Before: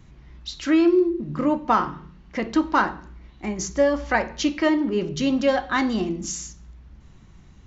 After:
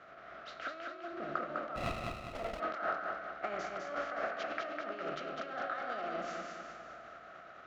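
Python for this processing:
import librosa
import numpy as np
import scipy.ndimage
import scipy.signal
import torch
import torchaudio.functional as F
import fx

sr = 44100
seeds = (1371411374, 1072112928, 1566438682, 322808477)

p1 = fx.spec_flatten(x, sr, power=0.5)
p2 = fx.air_absorb(p1, sr, metres=120.0)
p3 = fx.over_compress(p2, sr, threshold_db=-31.0, ratio=-1.0)
p4 = fx.double_bandpass(p3, sr, hz=940.0, octaves=0.96)
p5 = p4 + fx.echo_feedback(p4, sr, ms=203, feedback_pct=47, wet_db=-4.0, dry=0)
p6 = fx.running_max(p5, sr, window=17, at=(1.75, 2.59), fade=0.02)
y = F.gain(torch.from_numpy(p6), 1.5).numpy()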